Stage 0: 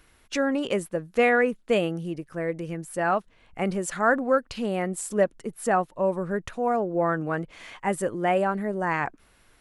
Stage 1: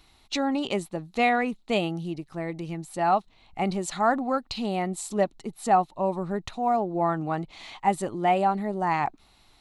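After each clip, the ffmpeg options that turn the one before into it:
ffmpeg -i in.wav -af "equalizer=frequency=500:width_type=o:width=0.33:gain=-10,equalizer=frequency=800:width_type=o:width=0.33:gain=8,equalizer=frequency=1600:width_type=o:width=0.33:gain=-11,equalizer=frequency=4000:width_type=o:width=0.33:gain=12,equalizer=frequency=10000:width_type=o:width=0.33:gain=-7" out.wav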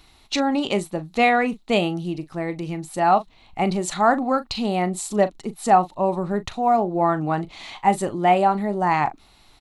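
ffmpeg -i in.wav -filter_complex "[0:a]asplit=2[link_01][link_02];[link_02]adelay=39,volume=-14dB[link_03];[link_01][link_03]amix=inputs=2:normalize=0,volume=5dB" out.wav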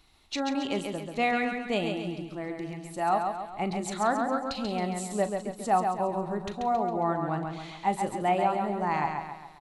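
ffmpeg -i in.wav -af "aecho=1:1:136|272|408|544|680|816:0.562|0.27|0.13|0.0622|0.0299|0.0143,volume=-9dB" out.wav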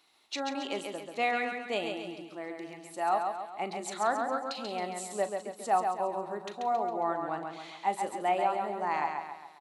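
ffmpeg -i in.wav -af "highpass=360,volume=-2dB" out.wav

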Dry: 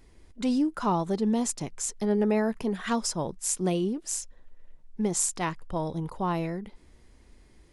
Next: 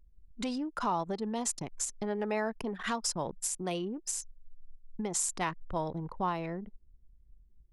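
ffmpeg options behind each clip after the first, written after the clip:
ffmpeg -i in.wav -filter_complex "[0:a]acrossover=split=600|1000[link_01][link_02][link_03];[link_01]acompressor=threshold=-34dB:ratio=12[link_04];[link_04][link_02][link_03]amix=inputs=3:normalize=0,alimiter=limit=-20.5dB:level=0:latency=1:release=208,anlmdn=0.398" out.wav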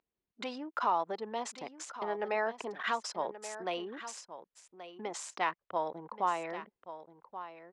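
ffmpeg -i in.wav -af "highpass=500,lowpass=3400,aecho=1:1:1129:0.237,volume=2.5dB" out.wav

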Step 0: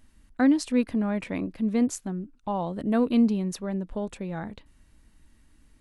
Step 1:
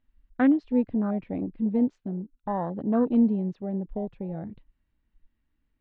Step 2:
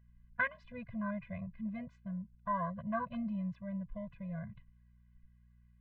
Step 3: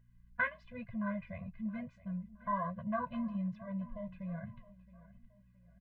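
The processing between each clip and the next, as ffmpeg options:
ffmpeg -i in.wav -af "afwtdn=0.0282,lowpass=frequency=3600:width=0.5412,lowpass=frequency=3600:width=1.3066" out.wav
ffmpeg -i in.wav -af "equalizer=frequency=125:width_type=o:width=1:gain=8,equalizer=frequency=250:width_type=o:width=1:gain=-10,equalizer=frequency=500:width_type=o:width=1:gain=-9,equalizer=frequency=1000:width_type=o:width=1:gain=9,equalizer=frequency=2000:width_type=o:width=1:gain=11,aeval=exprs='val(0)+0.00141*(sin(2*PI*60*n/s)+sin(2*PI*2*60*n/s)/2+sin(2*PI*3*60*n/s)/3+sin(2*PI*4*60*n/s)/4+sin(2*PI*5*60*n/s)/5)':channel_layout=same,afftfilt=real='re*eq(mod(floor(b*sr/1024/240),2),0)':imag='im*eq(mod(floor(b*sr/1024/240),2),0)':win_size=1024:overlap=0.75,volume=-5dB" out.wav
ffmpeg -i in.wav -af "flanger=delay=7.2:depth=6.8:regen=-46:speed=1.1:shape=triangular,aecho=1:1:669|1338|2007:0.112|0.0482|0.0207,volume=4dB" out.wav

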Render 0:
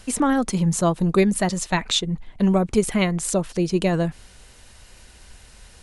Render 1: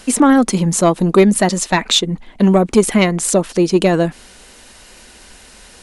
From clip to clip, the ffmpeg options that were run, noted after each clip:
ffmpeg -i in.wav -af "lowshelf=frequency=170:width_type=q:width=1.5:gain=-9,acontrast=76,volume=1.5dB" out.wav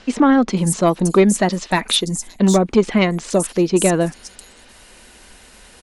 ffmpeg -i in.wav -filter_complex "[0:a]acrossover=split=5700[link_01][link_02];[link_02]adelay=570[link_03];[link_01][link_03]amix=inputs=2:normalize=0,volume=-2.5dB" out.wav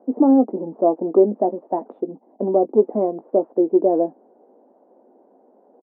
ffmpeg -i in.wav -filter_complex "[0:a]asuperpass=centerf=450:order=8:qfactor=0.82,asplit=2[link_01][link_02];[link_02]adelay=19,volume=-12.5dB[link_03];[link_01][link_03]amix=inputs=2:normalize=0" out.wav

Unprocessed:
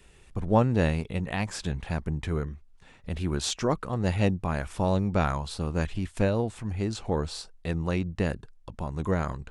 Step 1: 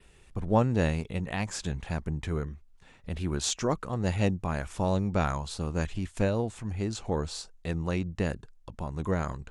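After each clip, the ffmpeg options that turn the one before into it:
ffmpeg -i in.wav -af "adynamicequalizer=threshold=0.00158:dfrequency=6800:dqfactor=2.7:tfrequency=6800:tqfactor=2.7:attack=5:release=100:ratio=0.375:range=3:mode=boostabove:tftype=bell,volume=-2dB" out.wav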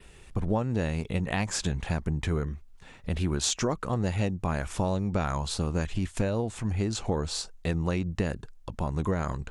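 ffmpeg -i in.wav -af "acompressor=threshold=-29dB:ratio=10,volume=6dB" out.wav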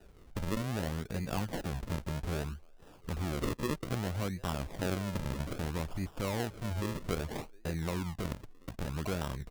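ffmpeg -i in.wav -filter_complex "[0:a]acrossover=split=340|730|1900[link_01][link_02][link_03][link_04];[link_01]alimiter=limit=-23.5dB:level=0:latency=1:release=18[link_05];[link_02]aecho=1:1:720|1440|2160:0.0891|0.0339|0.0129[link_06];[link_05][link_06][link_03][link_04]amix=inputs=4:normalize=0,acrusher=samples=40:mix=1:aa=0.000001:lfo=1:lforange=40:lforate=0.62,volume=-5.5dB" out.wav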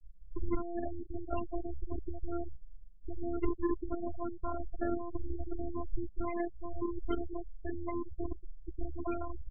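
ffmpeg -i in.wav -af "lowshelf=frequency=63:gain=8.5,afftfilt=real='hypot(re,im)*cos(PI*b)':imag='0':win_size=512:overlap=0.75,afftfilt=real='re*gte(hypot(re,im),0.0316)':imag='im*gte(hypot(re,im),0.0316)':win_size=1024:overlap=0.75,volume=5dB" out.wav

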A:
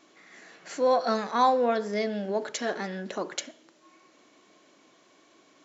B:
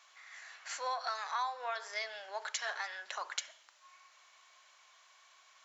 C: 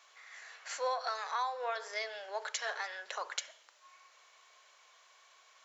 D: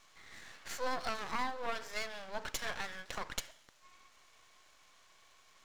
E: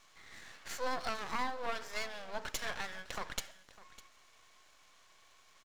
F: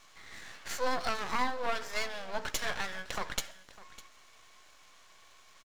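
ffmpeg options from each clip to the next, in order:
ffmpeg -i in.wav -af "highpass=frequency=890:width=0.5412,highpass=frequency=890:width=1.3066,acompressor=threshold=-33dB:ratio=6" out.wav
ffmpeg -i in.wav -af "equalizer=frequency=470:width_type=o:width=0.58:gain=10" out.wav
ffmpeg -i in.wav -af "aeval=exprs='max(val(0),0)':channel_layout=same,volume=2.5dB" out.wav
ffmpeg -i in.wav -af "aecho=1:1:603:0.119" out.wav
ffmpeg -i in.wav -filter_complex "[0:a]asplit=2[link_01][link_02];[link_02]adelay=16,volume=-13.5dB[link_03];[link_01][link_03]amix=inputs=2:normalize=0,volume=4.5dB" out.wav

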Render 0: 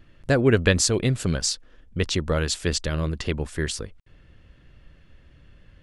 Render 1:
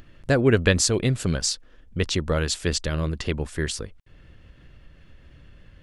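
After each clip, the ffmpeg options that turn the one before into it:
ffmpeg -i in.wav -af "acompressor=mode=upward:threshold=-42dB:ratio=2.5" out.wav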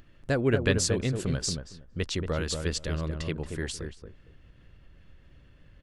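ffmpeg -i in.wav -filter_complex "[0:a]asplit=2[link_01][link_02];[link_02]adelay=230,lowpass=frequency=960:poles=1,volume=-4.5dB,asplit=2[link_03][link_04];[link_04]adelay=230,lowpass=frequency=960:poles=1,volume=0.18,asplit=2[link_05][link_06];[link_06]adelay=230,lowpass=frequency=960:poles=1,volume=0.18[link_07];[link_01][link_03][link_05][link_07]amix=inputs=4:normalize=0,volume=-6.5dB" out.wav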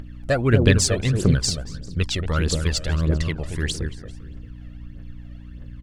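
ffmpeg -i in.wav -filter_complex "[0:a]asplit=2[link_01][link_02];[link_02]adelay=396.5,volume=-18dB,highshelf=frequency=4000:gain=-8.92[link_03];[link_01][link_03]amix=inputs=2:normalize=0,aphaser=in_gain=1:out_gain=1:delay=1.7:decay=0.64:speed=1.6:type=triangular,aeval=exprs='val(0)+0.00794*(sin(2*PI*60*n/s)+sin(2*PI*2*60*n/s)/2+sin(2*PI*3*60*n/s)/3+sin(2*PI*4*60*n/s)/4+sin(2*PI*5*60*n/s)/5)':channel_layout=same,volume=4.5dB" out.wav

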